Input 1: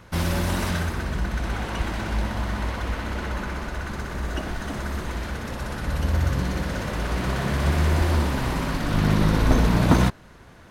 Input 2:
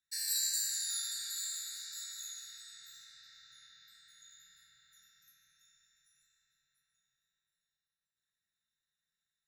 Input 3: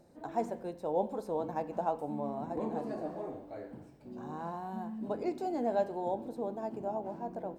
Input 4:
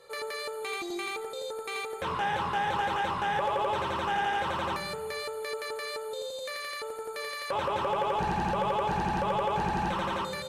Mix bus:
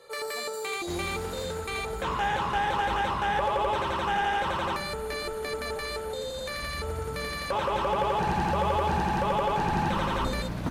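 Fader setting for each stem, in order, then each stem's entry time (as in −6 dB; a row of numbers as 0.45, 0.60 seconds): −14.0, −11.5, −15.0, +2.0 decibels; 0.75, 0.00, 0.00, 0.00 seconds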